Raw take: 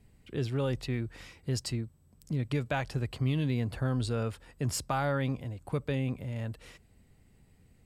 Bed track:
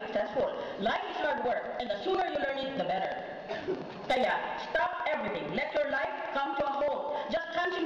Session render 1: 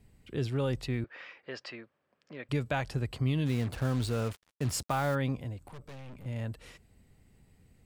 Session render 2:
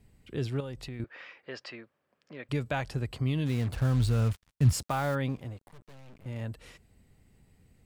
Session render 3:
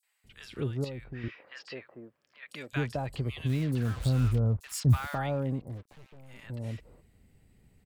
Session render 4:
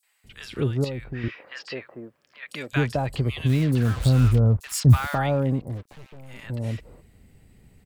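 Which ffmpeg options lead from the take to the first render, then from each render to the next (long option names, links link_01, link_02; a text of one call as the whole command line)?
ffmpeg -i in.wav -filter_complex "[0:a]asettb=1/sr,asplit=3[link_01][link_02][link_03];[link_01]atrim=end=1.044[link_04];[link_02]atrim=start=1.04:end=2.49,asetpts=PTS-STARTPTS,afade=type=in:duration=0.004:curve=qsin,afade=type=out:start_time=1.446:duration=0.004:curve=qsin,highpass=490,equalizer=frequency=560:width_type=q:width=4:gain=6,equalizer=frequency=1200:width_type=q:width=4:gain=5,equalizer=frequency=1700:width_type=q:width=4:gain=8,equalizer=frequency=2500:width_type=q:width=4:gain=4,equalizer=frequency=4000:width_type=q:width=4:gain=-5,lowpass=frequency=4200:width=0.5412,lowpass=frequency=4200:width=1.3066[link_05];[link_03]atrim=start=2.486[link_06];[link_04][link_05]acrossfade=duration=0.004:curve1=hsin:curve2=qsin[link_07];[link_07][link_06]acrossfade=duration=0.004:curve1=qsin:curve2=hsin,asplit=3[link_08][link_09][link_10];[link_08]afade=type=out:start_time=3.45:duration=0.02[link_11];[link_09]acrusher=bits=6:mix=0:aa=0.5,afade=type=in:start_time=3.45:duration=0.02,afade=type=out:start_time=5.14:duration=0.02[link_12];[link_10]afade=type=in:start_time=5.14:duration=0.02[link_13];[link_11][link_12][link_13]amix=inputs=3:normalize=0,asettb=1/sr,asplit=3[link_14][link_15][link_16];[link_14]atrim=end=5.674[link_17];[link_15]atrim=start=5.67:end=6.26,asetpts=PTS-STARTPTS,afade=type=in:duration=0.004:curve=qsin,afade=type=out:start_time=0.586:duration=0.004:curve=qsin,aeval=exprs='(tanh(178*val(0)+0.55)-tanh(0.55))/178':channel_layout=same[link_18];[link_16]atrim=start=6.256[link_19];[link_17][link_18]acrossfade=duration=0.004:curve1=hsin:curve2=qsin[link_20];[link_20][link_19]acrossfade=duration=0.004:curve1=qsin:curve2=hsin" out.wav
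ffmpeg -i in.wav -filter_complex "[0:a]asettb=1/sr,asplit=3[link_01][link_02][link_03];[link_01]atrim=end=0.604[link_04];[link_02]atrim=start=0.6:end=1,asetpts=PTS-STARTPTS,afade=type=in:duration=0.004:curve=qsin,afade=type=out:start_time=0.396:duration=0.004:curve=qsin,acompressor=threshold=-38dB:ratio=3:attack=3.2:release=140:knee=1:detection=peak[link_05];[link_03]atrim=start=0.996[link_06];[link_04][link_05]acrossfade=duration=0.004:curve1=hsin:curve2=qsin[link_07];[link_07][link_06]acrossfade=duration=0.004:curve1=qsin:curve2=hsin,asettb=1/sr,asplit=3[link_08][link_09][link_10];[link_08]atrim=end=3.444[link_11];[link_09]atrim=start=3.44:end=4.73,asetpts=PTS-STARTPTS,afade=type=in:duration=0.004:curve=qsin,afade=type=out:start_time=1.286:duration=0.004:curve=qsin,asubboost=boost=11.5:cutoff=180[link_12];[link_10]atrim=start=4.726[link_13];[link_11][link_12]acrossfade=duration=0.004:curve1=hsin:curve2=qsin[link_14];[link_14][link_13]acrossfade=duration=0.004:curve1=qsin:curve2=hsin,asettb=1/sr,asplit=3[link_15][link_16][link_17];[link_15]atrim=end=5.294[link_18];[link_16]atrim=start=5.29:end=6.42,asetpts=PTS-STARTPTS,afade=type=in:duration=0.004:curve=qsin,afade=type=out:start_time=1.126:duration=0.004:curve=qsin,aeval=exprs='sgn(val(0))*max(abs(val(0))-0.00299,0)':channel_layout=same[link_19];[link_17]atrim=start=6.416[link_20];[link_18][link_19]acrossfade=duration=0.004:curve1=hsin:curve2=qsin[link_21];[link_21][link_20]acrossfade=duration=0.004:curve1=qsin:curve2=hsin" out.wav
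ffmpeg -i in.wav -filter_complex "[0:a]acrossover=split=1000|5700[link_01][link_02][link_03];[link_02]adelay=30[link_04];[link_01]adelay=240[link_05];[link_05][link_04][link_03]amix=inputs=3:normalize=0" out.wav
ffmpeg -i in.wav -af "volume=8dB" out.wav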